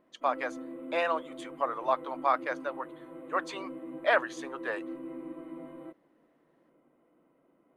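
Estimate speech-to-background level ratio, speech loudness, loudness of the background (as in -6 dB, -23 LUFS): 11.5 dB, -32.0 LUFS, -43.5 LUFS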